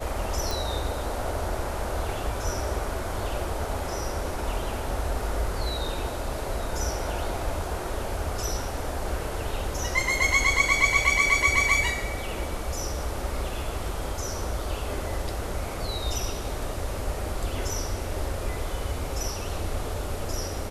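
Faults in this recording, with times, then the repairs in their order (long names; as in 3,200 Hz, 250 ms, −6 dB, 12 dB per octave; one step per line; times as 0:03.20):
0:00.51: click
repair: click removal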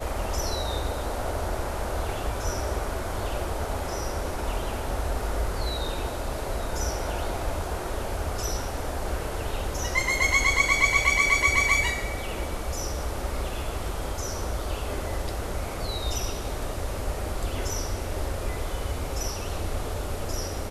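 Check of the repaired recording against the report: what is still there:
none of them is left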